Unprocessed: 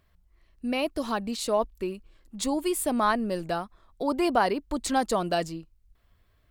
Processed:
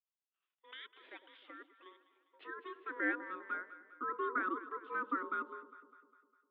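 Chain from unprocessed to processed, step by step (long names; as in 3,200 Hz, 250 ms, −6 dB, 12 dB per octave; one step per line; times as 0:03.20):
downward expander −52 dBFS
band-pass filter sweep 2,400 Hz → 540 Hz, 0:00.99–0:04.14
dynamic equaliser 1,800 Hz, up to −6 dB, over −50 dBFS, Q 2.3
0:00.71–0:01.86: output level in coarse steps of 11 dB
ring modulation 740 Hz
Chebyshev band-pass filter 270–3,600 Hz, order 5
delay that swaps between a low-pass and a high-pass 101 ms, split 930 Hz, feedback 72%, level −12 dB
level −1.5 dB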